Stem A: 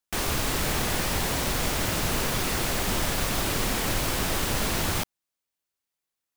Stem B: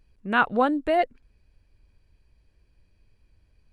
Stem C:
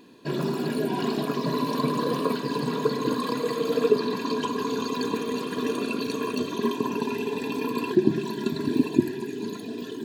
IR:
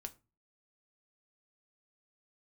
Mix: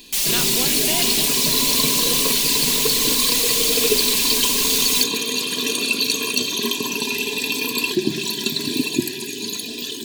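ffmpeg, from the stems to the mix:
-filter_complex "[0:a]aecho=1:1:5.1:0.93,volume=0.237[s0];[1:a]acompressor=threshold=0.0398:ratio=6,volume=0.891[s1];[2:a]volume=0.891[s2];[s0][s1][s2]amix=inputs=3:normalize=0,aexciter=amount=4.4:drive=9.3:freq=2200"

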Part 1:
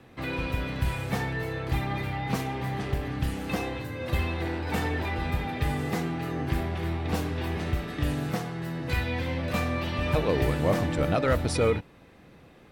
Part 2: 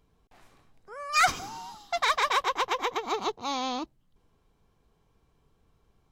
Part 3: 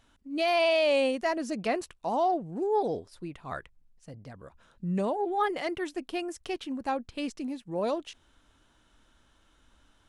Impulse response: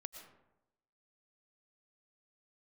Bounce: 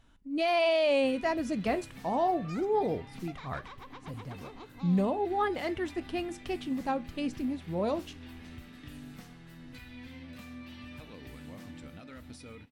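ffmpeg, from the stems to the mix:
-filter_complex "[0:a]tiltshelf=f=1400:g=-8.5,alimiter=limit=0.0891:level=0:latency=1:release=241,adelay=850,volume=0.224[s0];[1:a]bandreject=f=50:t=h:w=6,bandreject=f=100:t=h:w=6,bandreject=f=150:t=h:w=6,bandreject=f=200:t=h:w=6,bandreject=f=250:t=h:w=6,afwtdn=0.00891,adelay=1350,volume=0.282[s1];[2:a]volume=1.33[s2];[s0][s1]amix=inputs=2:normalize=0,equalizer=f=250:w=3.9:g=14,acompressor=threshold=0.01:ratio=6,volume=1[s3];[s2][s3]amix=inputs=2:normalize=0,bass=f=250:g=7,treble=f=4000:g=-3,flanger=delay=6.1:depth=5.8:regen=-77:speed=0.21:shape=triangular"

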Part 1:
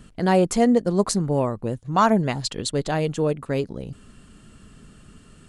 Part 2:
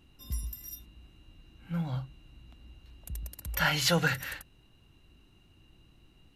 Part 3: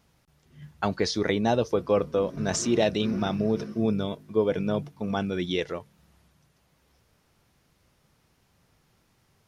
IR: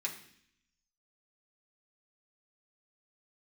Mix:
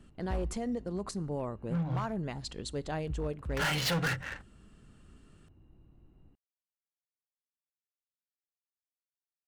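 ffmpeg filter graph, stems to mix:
-filter_complex "[0:a]alimiter=limit=0.237:level=0:latency=1:release=77,volume=0.266,asplit=2[s0][s1];[s1]volume=0.1[s2];[1:a]adynamicsmooth=sensitivity=6.5:basefreq=940,volume=1.12[s3];[s0]highshelf=f=5500:g=-6.5,alimiter=level_in=1.41:limit=0.0631:level=0:latency=1:release=41,volume=0.708,volume=1[s4];[3:a]atrim=start_sample=2205[s5];[s2][s5]afir=irnorm=-1:irlink=0[s6];[s3][s4][s6]amix=inputs=3:normalize=0,volume=22.4,asoftclip=hard,volume=0.0447"

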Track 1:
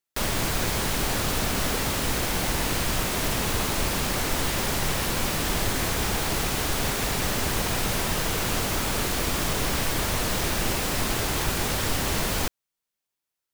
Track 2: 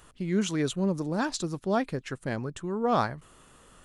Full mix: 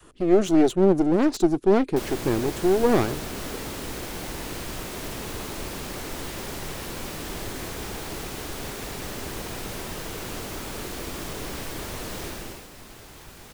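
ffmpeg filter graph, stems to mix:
-filter_complex "[0:a]adelay=1800,volume=0.355,afade=t=out:st=12.24:d=0.44:silence=0.298538[s0];[1:a]equalizer=f=350:w=1.6:g=12,aeval=exprs='clip(val(0),-1,0.0158)':c=same,volume=1.19[s1];[s0][s1]amix=inputs=2:normalize=0,adynamicequalizer=threshold=0.00501:dfrequency=360:dqfactor=1.3:tfrequency=360:tqfactor=1.3:attack=5:release=100:ratio=0.375:range=3.5:mode=boostabove:tftype=bell"

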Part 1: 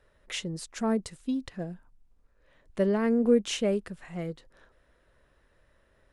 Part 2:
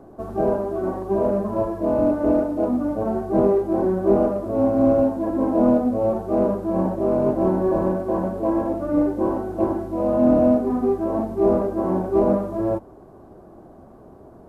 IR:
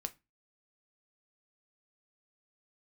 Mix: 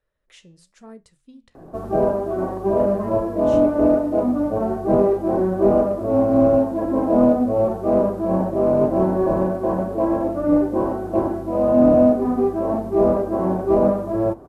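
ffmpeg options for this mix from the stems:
-filter_complex "[0:a]flanger=delay=8.3:depth=7.4:regen=-75:speed=1:shape=sinusoidal,volume=0.224,asplit=2[s0][s1];[s1]volume=0.562[s2];[1:a]adelay=1550,volume=0.841,asplit=2[s3][s4];[s4]volume=0.668[s5];[2:a]atrim=start_sample=2205[s6];[s2][s5]amix=inputs=2:normalize=0[s7];[s7][s6]afir=irnorm=-1:irlink=0[s8];[s0][s3][s8]amix=inputs=3:normalize=0"

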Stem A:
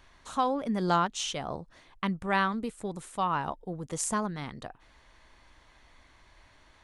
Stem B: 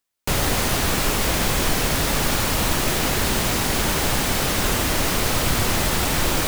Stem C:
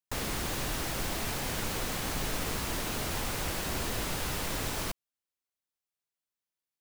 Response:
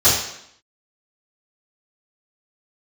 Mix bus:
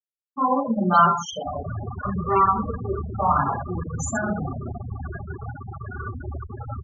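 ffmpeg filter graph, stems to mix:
-filter_complex "[0:a]asplit=2[s0][s1];[s1]adelay=5.6,afreqshift=-1.7[s2];[s0][s2]amix=inputs=2:normalize=1,volume=0.668,asplit=4[s3][s4][s5][s6];[s4]volume=0.316[s7];[s5]volume=0.119[s8];[1:a]equalizer=f=1500:w=0.94:g=5.5,aeval=exprs='(tanh(5.62*val(0)+0.35)-tanh(0.35))/5.62':c=same,adelay=1300,volume=0.211,asplit=2[s9][s10];[s10]volume=0.168[s11];[2:a]equalizer=f=170:w=0.34:g=12,crystalizer=i=2:c=0,adelay=250,volume=0.224,asplit=2[s12][s13];[s13]volume=0.562[s14];[s6]apad=whole_len=342832[s15];[s9][s15]sidechaincompress=threshold=0.00224:ratio=16:attack=11:release=1050[s16];[s3][s16]amix=inputs=2:normalize=0,lowpass=f=2500:w=0.5412,lowpass=f=2500:w=1.3066,acompressor=threshold=0.0112:ratio=16,volume=1[s17];[3:a]atrim=start_sample=2205[s18];[s7][s11]amix=inputs=2:normalize=0[s19];[s19][s18]afir=irnorm=-1:irlink=0[s20];[s8][s14]amix=inputs=2:normalize=0,aecho=0:1:162:1[s21];[s12][s17][s20][s21]amix=inputs=4:normalize=0,afftfilt=real='re*gte(hypot(re,im),0.126)':imag='im*gte(hypot(re,im),0.126)':win_size=1024:overlap=0.75,equalizer=f=1400:t=o:w=0.66:g=5"

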